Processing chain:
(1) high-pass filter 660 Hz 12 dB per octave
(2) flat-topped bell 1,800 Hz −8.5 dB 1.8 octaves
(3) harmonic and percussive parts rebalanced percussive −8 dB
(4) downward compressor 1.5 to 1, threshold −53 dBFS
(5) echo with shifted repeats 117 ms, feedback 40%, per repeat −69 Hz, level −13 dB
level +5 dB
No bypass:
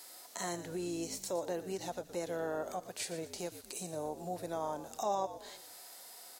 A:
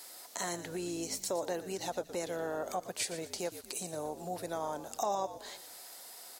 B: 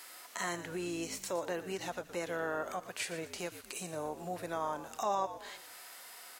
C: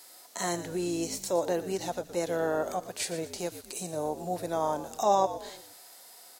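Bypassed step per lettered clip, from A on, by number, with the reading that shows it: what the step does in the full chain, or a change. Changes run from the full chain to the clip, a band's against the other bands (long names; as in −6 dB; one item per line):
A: 3, 125 Hz band −2.5 dB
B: 2, change in integrated loudness +1.0 LU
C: 4, average gain reduction 5.5 dB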